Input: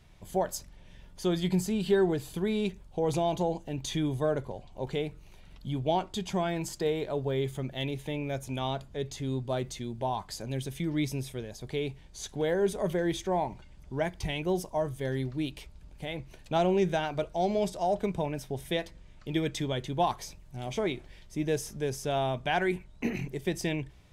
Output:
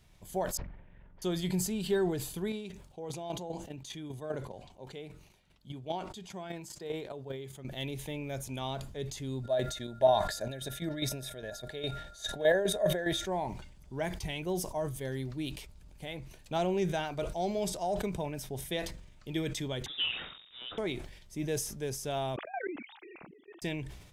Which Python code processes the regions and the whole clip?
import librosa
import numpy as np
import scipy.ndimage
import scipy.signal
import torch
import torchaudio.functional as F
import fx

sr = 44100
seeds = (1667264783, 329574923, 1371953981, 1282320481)

y = fx.chain(x, sr, fx.lowpass(hz=2100.0, slope=24),
    fx.doppler_dist(depth_ms=0.34), at=(0.57, 1.22))
y = fx.chain(y, sr, fx.highpass(hz=110.0, slope=6),
    fx.high_shelf(hz=9800.0, db=-6.5),
    fx.chopper(hz=5.0, depth_pct=60, duty_pct=10), at=(2.5, 7.65))
y = fx.small_body(y, sr, hz=(630.0, 1700.0, 3700.0), ring_ms=35, db=18, at=(9.43, 13.24), fade=0.02)
y = fx.chopper(y, sr, hz=4.9, depth_pct=60, duty_pct=35, at=(9.43, 13.24), fade=0.02)
y = fx.dmg_tone(y, sr, hz=1400.0, level_db=-57.0, at=(9.43, 13.24), fade=0.02)
y = fx.chain(y, sr, fx.delta_mod(bps=64000, step_db=-44.5),
    fx.low_shelf(hz=330.0, db=-11.0),
    fx.freq_invert(carrier_hz=3700), at=(19.86, 20.78))
y = fx.chain(y, sr, fx.sine_speech(),
    fx.auto_swell(attack_ms=107.0),
    fx.level_steps(step_db=15), at=(22.36, 23.62))
y = fx.high_shelf(y, sr, hz=5700.0, db=8.0)
y = fx.sustainer(y, sr, db_per_s=68.0)
y = F.gain(torch.from_numpy(y), -5.0).numpy()